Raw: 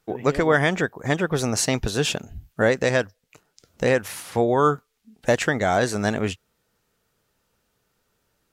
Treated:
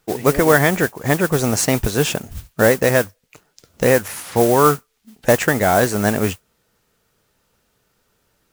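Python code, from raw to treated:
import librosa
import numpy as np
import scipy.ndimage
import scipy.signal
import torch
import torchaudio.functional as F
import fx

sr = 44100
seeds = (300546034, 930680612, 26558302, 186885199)

y = fx.mod_noise(x, sr, seeds[0], snr_db=12)
y = fx.dynamic_eq(y, sr, hz=3800.0, q=1.1, threshold_db=-42.0, ratio=4.0, max_db=-6)
y = y * librosa.db_to_amplitude(5.5)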